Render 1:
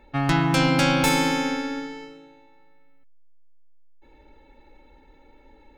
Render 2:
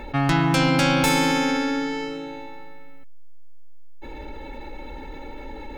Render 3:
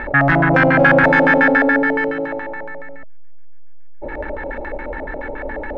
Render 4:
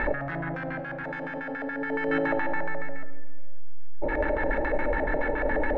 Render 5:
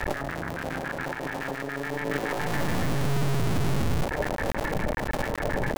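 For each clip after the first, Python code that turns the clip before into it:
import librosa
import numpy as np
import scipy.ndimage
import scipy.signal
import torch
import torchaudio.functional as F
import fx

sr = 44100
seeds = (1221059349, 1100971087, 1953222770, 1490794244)

y1 = fx.env_flatten(x, sr, amount_pct=50)
y2 = fx.leveller(y1, sr, passes=3)
y2 = fx.filter_lfo_lowpass(y2, sr, shape='square', hz=7.1, low_hz=630.0, high_hz=1700.0, q=7.8)
y2 = F.gain(torch.from_numpy(y2), -5.0).numpy()
y3 = fx.over_compress(y2, sr, threshold_db=-23.0, ratio=-1.0)
y3 = fx.room_shoebox(y3, sr, seeds[0], volume_m3=1700.0, walls='mixed', distance_m=0.51)
y3 = F.gain(torch.from_numpy(y3), -5.0).numpy()
y4 = fx.cycle_switch(y3, sr, every=2, mode='muted')
y4 = fx.recorder_agc(y4, sr, target_db=-22.0, rise_db_per_s=40.0, max_gain_db=30)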